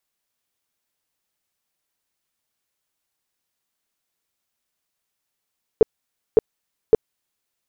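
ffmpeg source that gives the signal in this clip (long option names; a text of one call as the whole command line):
ffmpeg -f lavfi -i "aevalsrc='0.473*sin(2*PI*442*mod(t,0.56))*lt(mod(t,0.56),8/442)':duration=1.68:sample_rate=44100" out.wav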